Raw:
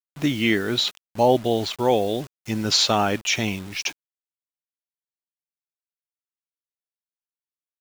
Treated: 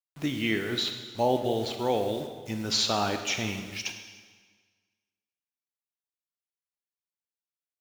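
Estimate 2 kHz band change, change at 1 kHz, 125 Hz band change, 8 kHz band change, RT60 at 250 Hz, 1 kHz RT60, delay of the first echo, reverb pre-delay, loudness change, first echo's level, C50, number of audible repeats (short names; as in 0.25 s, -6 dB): -6.5 dB, -6.5 dB, -6.5 dB, -6.5 dB, 1.6 s, 1.5 s, none, 19 ms, -6.5 dB, none, 7.0 dB, none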